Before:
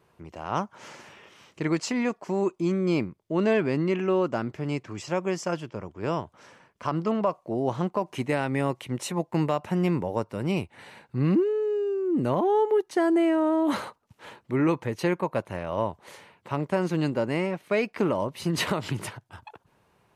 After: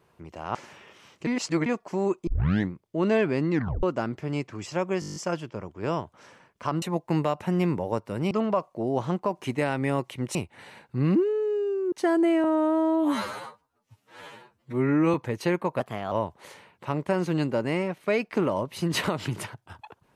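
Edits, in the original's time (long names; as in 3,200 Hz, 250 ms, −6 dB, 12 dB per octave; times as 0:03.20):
0:00.55–0:00.91: remove
0:01.63–0:02.02: reverse
0:02.63: tape start 0.45 s
0:03.87: tape stop 0.32 s
0:05.36: stutter 0.02 s, 9 plays
0:09.06–0:10.55: move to 0:07.02
0:12.12–0:12.85: remove
0:13.37–0:14.72: time-stretch 2×
0:15.38–0:15.75: play speed 117%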